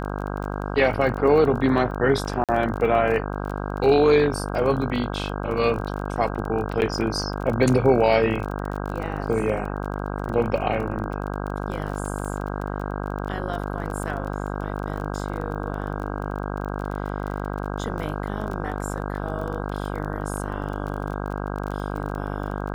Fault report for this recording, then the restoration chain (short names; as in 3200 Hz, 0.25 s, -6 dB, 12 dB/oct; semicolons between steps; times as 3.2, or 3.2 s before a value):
buzz 50 Hz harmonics 32 -29 dBFS
crackle 26/s -30 dBFS
2.44–2.49 gap 47 ms
6.81–6.82 gap 9.2 ms
12.21–12.22 gap 5.1 ms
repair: de-click; de-hum 50 Hz, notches 32; interpolate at 2.44, 47 ms; interpolate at 6.81, 9.2 ms; interpolate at 12.21, 5.1 ms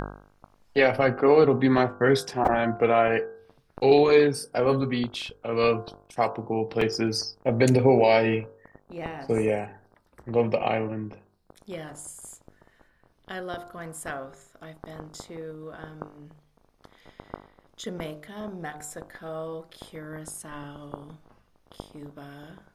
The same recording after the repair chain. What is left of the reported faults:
none